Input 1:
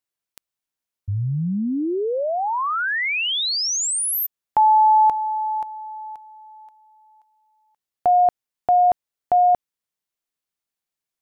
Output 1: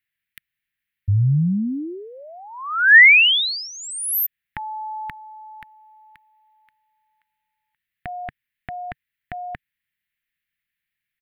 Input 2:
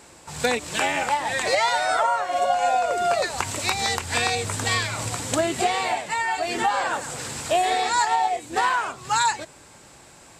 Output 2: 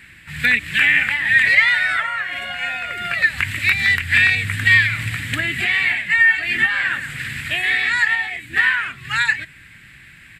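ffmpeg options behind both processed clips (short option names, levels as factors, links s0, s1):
-af "firequalizer=gain_entry='entry(140,0);entry(470,-23);entry(870,-23);entry(1800,10);entry(5900,-21);entry(12000,-4)':delay=0.05:min_phase=1,volume=2.11"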